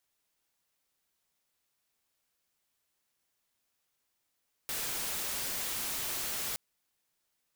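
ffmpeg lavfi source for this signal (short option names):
-f lavfi -i "anoisesrc=c=white:a=0.0291:d=1.87:r=44100:seed=1"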